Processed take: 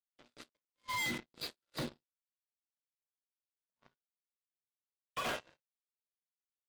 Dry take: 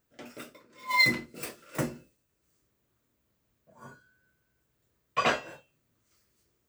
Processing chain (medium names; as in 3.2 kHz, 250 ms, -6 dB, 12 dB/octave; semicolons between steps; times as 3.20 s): knee-point frequency compression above 3 kHz 4:1; overload inside the chain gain 31 dB; power-law waveshaper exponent 3; trim -3 dB